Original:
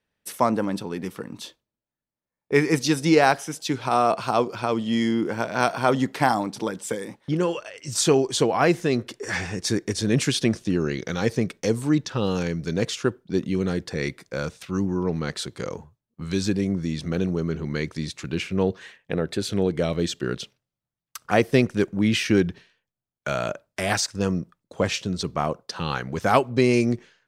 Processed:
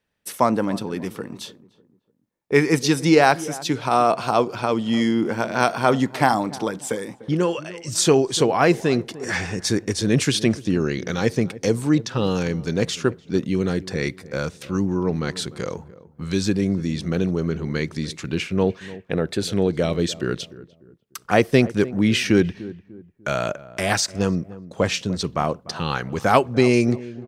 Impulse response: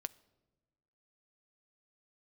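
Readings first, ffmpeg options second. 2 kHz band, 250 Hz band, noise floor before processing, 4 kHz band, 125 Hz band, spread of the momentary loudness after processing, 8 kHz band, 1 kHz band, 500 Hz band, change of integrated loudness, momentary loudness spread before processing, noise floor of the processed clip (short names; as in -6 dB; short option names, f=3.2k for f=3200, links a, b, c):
+2.5 dB, +2.5 dB, under -85 dBFS, +2.5 dB, +2.5 dB, 11 LU, +2.5 dB, +2.5 dB, +2.5 dB, +2.5 dB, 11 LU, -58 dBFS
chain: -filter_complex "[0:a]asplit=2[a][b];[b]adelay=297,lowpass=f=910:p=1,volume=-16.5dB,asplit=2[c][d];[d]adelay=297,lowpass=f=910:p=1,volume=0.38,asplit=2[e][f];[f]adelay=297,lowpass=f=910:p=1,volume=0.38[g];[a][c][e][g]amix=inputs=4:normalize=0,volume=2.5dB"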